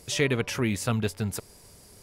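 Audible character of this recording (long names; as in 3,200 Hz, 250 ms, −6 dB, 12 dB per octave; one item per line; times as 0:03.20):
background noise floor −53 dBFS
spectral slope −4.5 dB per octave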